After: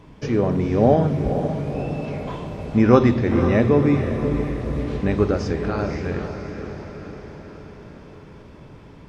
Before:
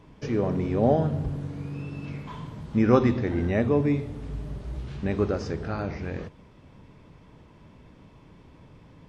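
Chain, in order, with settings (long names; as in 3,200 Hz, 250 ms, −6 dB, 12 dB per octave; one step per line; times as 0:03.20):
feedback delay with all-pass diffusion 514 ms, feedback 60%, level −8 dB
level +5.5 dB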